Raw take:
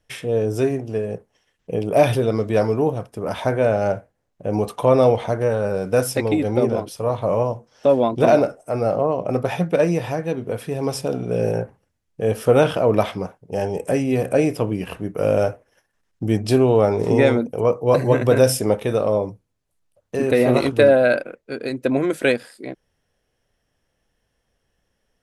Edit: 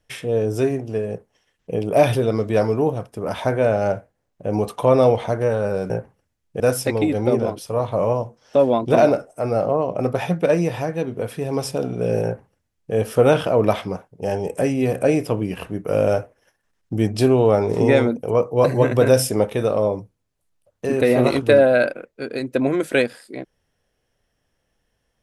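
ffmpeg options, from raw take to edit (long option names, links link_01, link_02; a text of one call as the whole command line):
ffmpeg -i in.wav -filter_complex "[0:a]asplit=3[link_01][link_02][link_03];[link_01]atrim=end=5.902[link_04];[link_02]atrim=start=11.538:end=12.242[link_05];[link_03]atrim=start=5.898[link_06];[link_04][link_05]acrossfade=duration=0.004:curve1=hsin:curve2=hsin[link_07];[link_07][link_06]acrossfade=duration=0.004:curve1=hsin:curve2=hsin" out.wav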